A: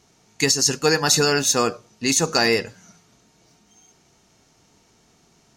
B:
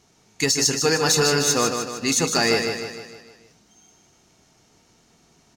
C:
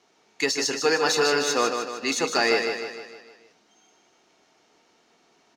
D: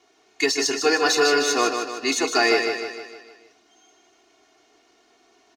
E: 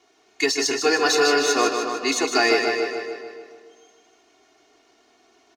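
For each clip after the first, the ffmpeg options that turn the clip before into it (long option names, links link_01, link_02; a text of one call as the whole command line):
ffmpeg -i in.wav -filter_complex "[0:a]acontrast=67,asplit=2[link_01][link_02];[link_02]aecho=0:1:153|306|459|612|765|918:0.501|0.256|0.13|0.0665|0.0339|0.0173[link_03];[link_01][link_03]amix=inputs=2:normalize=0,volume=-7.5dB" out.wav
ffmpeg -i in.wav -filter_complex "[0:a]acrossover=split=270 4700:gain=0.0794 1 0.224[link_01][link_02][link_03];[link_01][link_02][link_03]amix=inputs=3:normalize=0" out.wav
ffmpeg -i in.wav -af "aecho=1:1:2.8:0.88" out.wav
ffmpeg -i in.wav -filter_complex "[0:a]asplit=2[link_01][link_02];[link_02]adelay=282,lowpass=frequency=1700:poles=1,volume=-6.5dB,asplit=2[link_03][link_04];[link_04]adelay=282,lowpass=frequency=1700:poles=1,volume=0.37,asplit=2[link_05][link_06];[link_06]adelay=282,lowpass=frequency=1700:poles=1,volume=0.37,asplit=2[link_07][link_08];[link_08]adelay=282,lowpass=frequency=1700:poles=1,volume=0.37[link_09];[link_01][link_03][link_05][link_07][link_09]amix=inputs=5:normalize=0" out.wav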